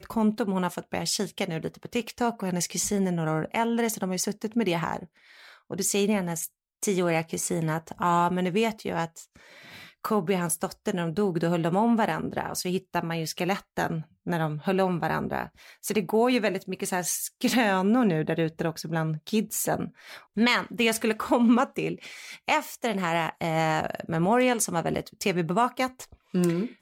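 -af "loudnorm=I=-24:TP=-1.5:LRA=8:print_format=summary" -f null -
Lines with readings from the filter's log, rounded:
Input Integrated:    -26.9 LUFS
Input True Peak:      -9.9 dBTP
Input LRA:             3.0 LU
Input Threshold:     -37.2 LUFS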